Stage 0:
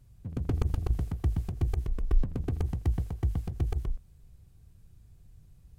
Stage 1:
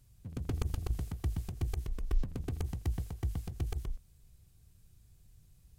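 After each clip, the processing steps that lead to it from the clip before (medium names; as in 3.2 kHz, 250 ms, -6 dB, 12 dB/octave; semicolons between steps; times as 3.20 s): treble shelf 2.3 kHz +10.5 dB; trim -6 dB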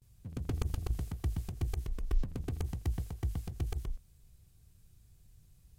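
gate with hold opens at -57 dBFS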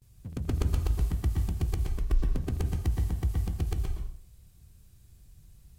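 plate-style reverb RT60 0.53 s, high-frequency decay 0.85×, pre-delay 105 ms, DRR 4 dB; trim +4 dB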